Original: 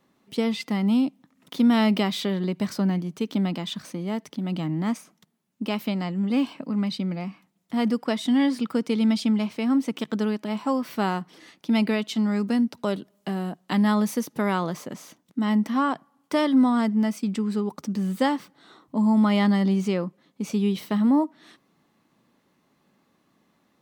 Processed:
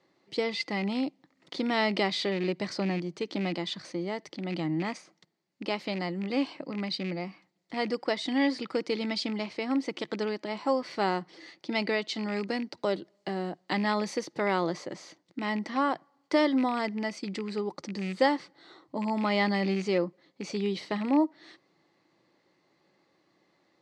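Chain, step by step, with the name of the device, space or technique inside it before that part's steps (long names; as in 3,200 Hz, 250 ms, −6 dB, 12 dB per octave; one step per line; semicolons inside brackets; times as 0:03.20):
car door speaker with a rattle (loose part that buzzes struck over −26 dBFS, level −29 dBFS; loudspeaker in its box 81–7,600 Hz, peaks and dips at 230 Hz −10 dB, 340 Hz +9 dB, 540 Hz +6 dB, 790 Hz +4 dB, 2,000 Hz +8 dB, 4,500 Hz +10 dB)
level −5 dB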